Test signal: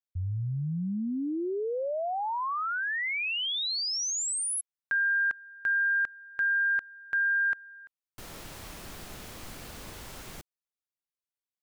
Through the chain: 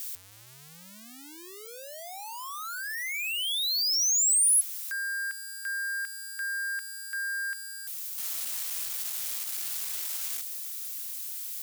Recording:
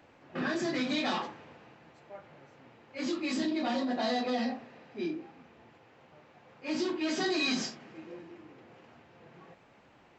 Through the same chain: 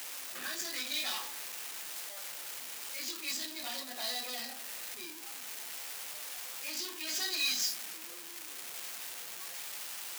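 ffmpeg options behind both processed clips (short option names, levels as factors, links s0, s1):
-af "aeval=exprs='val(0)+0.5*0.0188*sgn(val(0))':c=same,aderivative,volume=1.78"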